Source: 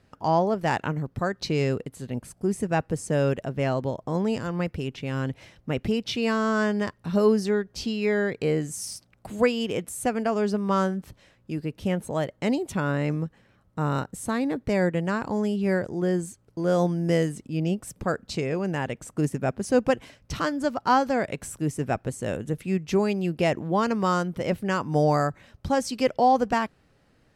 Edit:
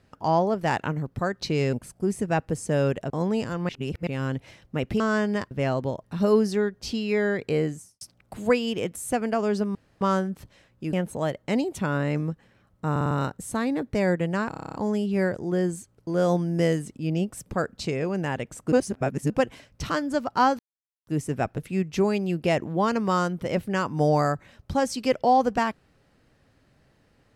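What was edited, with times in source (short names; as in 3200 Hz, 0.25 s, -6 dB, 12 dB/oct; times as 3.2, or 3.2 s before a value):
1.73–2.14 cut
3.51–4.04 move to 6.97
4.63–5.01 reverse
5.94–6.46 cut
8.56–8.94 studio fade out
10.68 insert room tone 0.26 s
11.6–11.87 cut
13.85 stutter 0.05 s, 5 plays
15.24 stutter 0.03 s, 9 plays
19.22–19.8 reverse
21.09–21.57 mute
22.08–22.53 cut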